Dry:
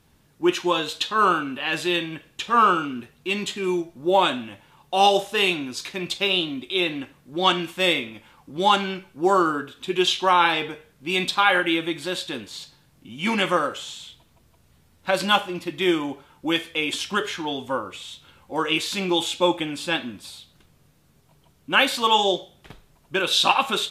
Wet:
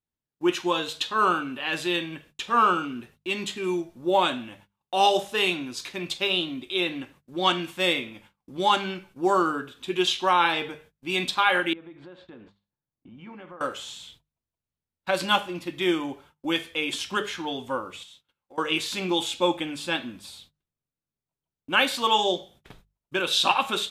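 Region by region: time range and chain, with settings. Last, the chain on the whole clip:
11.73–13.61 s: low-pass 1.4 kHz + compression 4:1, threshold -40 dBFS
18.03–18.58 s: bass shelf 190 Hz -9 dB + compression, threshold -43 dBFS
whole clip: gate -48 dBFS, range -30 dB; hum notches 50/100/150/200 Hz; trim -3 dB

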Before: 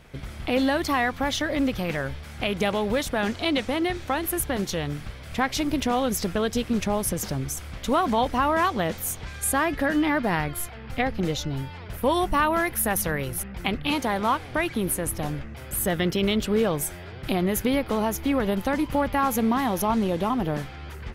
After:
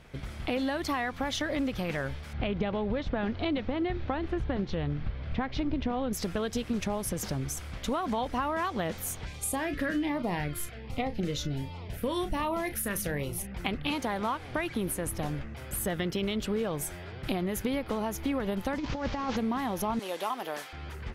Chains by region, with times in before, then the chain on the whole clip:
2.33–6.13 s: low-pass 4.5 kHz 24 dB/octave + tilt EQ -2 dB/octave
9.26–13.52 s: doubling 34 ms -11.5 dB + LFO notch sine 1.3 Hz 770–1700 Hz
18.78–19.37 s: one-bit delta coder 32 kbps, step -33.5 dBFS + compressor with a negative ratio -26 dBFS, ratio -0.5
19.99–20.73 s: high-pass 600 Hz + treble shelf 5.6 kHz +10 dB
whole clip: compression, threshold -24 dBFS; treble shelf 12 kHz -7 dB; trim -2.5 dB

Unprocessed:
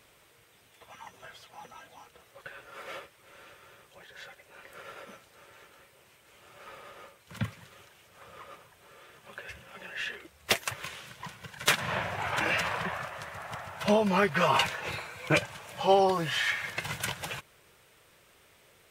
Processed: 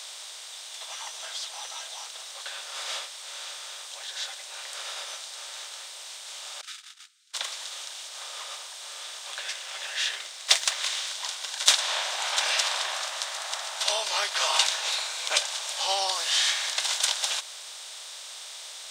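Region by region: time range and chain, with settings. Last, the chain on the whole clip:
6.61–7.34 s: Chebyshev high-pass 1.3 kHz, order 8 + gate -52 dBFS, range -38 dB
9.31–11.11 s: median filter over 3 samples + peaking EQ 2 kHz +5.5 dB 0.65 oct + band-stop 860 Hz, Q 15
whole clip: spectral levelling over time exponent 0.6; high-pass 650 Hz 24 dB/octave; high-order bell 5.5 kHz +15.5 dB; trim -6 dB

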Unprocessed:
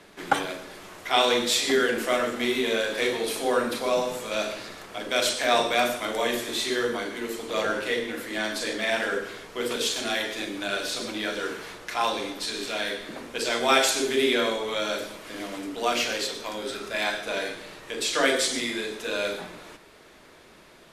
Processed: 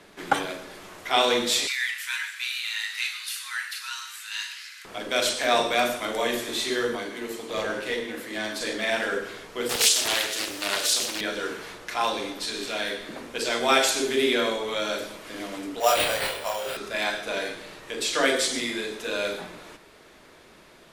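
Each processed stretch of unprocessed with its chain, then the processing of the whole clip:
1.67–4.85 s: inverse Chebyshev high-pass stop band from 450 Hz, stop band 50 dB + frequency shift +320 Hz
6.95–8.61 s: high-pass 110 Hz + band-stop 1.4 kHz, Q 17 + valve stage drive 18 dB, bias 0.4
9.69–11.21 s: tone controls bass -13 dB, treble +14 dB + loudspeaker Doppler distortion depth 0.45 ms
15.80–16.77 s: resonant low shelf 420 Hz -12.5 dB, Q 3 + sample-rate reducer 6.4 kHz + doubling 27 ms -3 dB
whole clip: none

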